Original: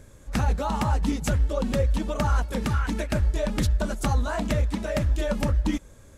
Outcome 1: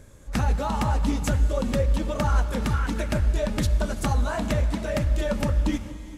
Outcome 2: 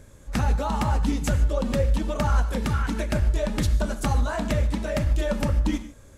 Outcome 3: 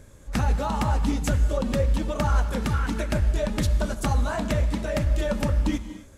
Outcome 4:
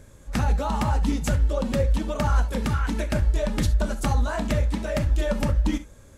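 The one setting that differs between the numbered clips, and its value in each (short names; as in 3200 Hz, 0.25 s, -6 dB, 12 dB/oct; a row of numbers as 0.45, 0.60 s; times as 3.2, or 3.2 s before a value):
non-linear reverb, gate: 490, 170, 310, 90 ms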